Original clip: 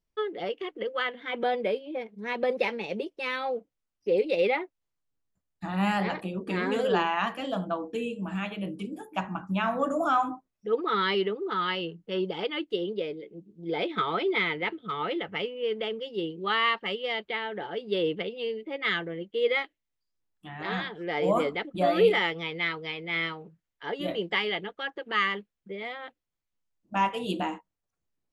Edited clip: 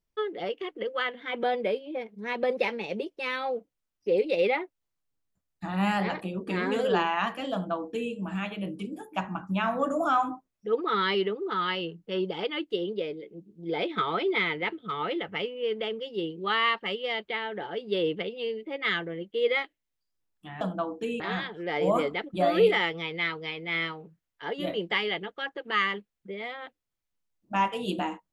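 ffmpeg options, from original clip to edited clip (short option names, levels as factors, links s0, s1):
-filter_complex "[0:a]asplit=3[s0][s1][s2];[s0]atrim=end=20.612[s3];[s1]atrim=start=7.528:end=8.122[s4];[s2]atrim=start=20.608[s5];[s3][s4]acrossfade=d=0.004:c1=hsin:c2=hsin[s6];[s6][s5]acrossfade=d=0.004:c1=hsin:c2=hsin"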